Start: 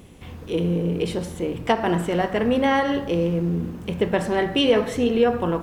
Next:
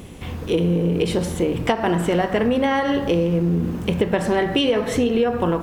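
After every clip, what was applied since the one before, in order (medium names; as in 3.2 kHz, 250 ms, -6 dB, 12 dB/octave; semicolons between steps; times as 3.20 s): compression, threshold -24 dBFS, peak gain reduction 11.5 dB; trim +8 dB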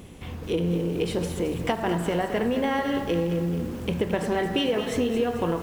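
bit-crushed delay 219 ms, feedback 55%, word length 6-bit, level -9.5 dB; trim -6 dB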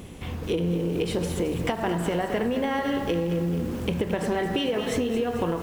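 compression, threshold -25 dBFS, peak gain reduction 6 dB; trim +3 dB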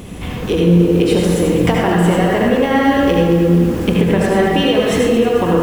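reverberation RT60 0.80 s, pre-delay 68 ms, DRR -1.5 dB; trim +8.5 dB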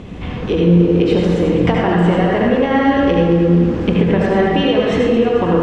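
distance through air 160 m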